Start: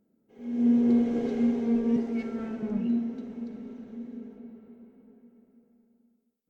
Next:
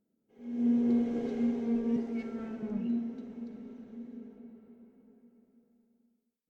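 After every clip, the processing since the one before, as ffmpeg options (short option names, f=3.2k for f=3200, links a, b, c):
-af "dynaudnorm=f=160:g=5:m=3.5dB,volume=-8.5dB"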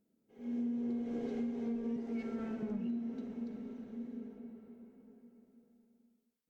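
-af "acompressor=threshold=-35dB:ratio=12,volume=1dB"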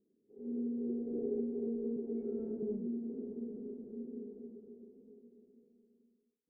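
-af "lowpass=f=400:t=q:w=4.9,volume=-5dB"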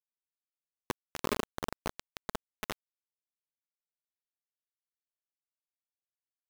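-af "acrusher=bits=4:mix=0:aa=0.000001,volume=3.5dB"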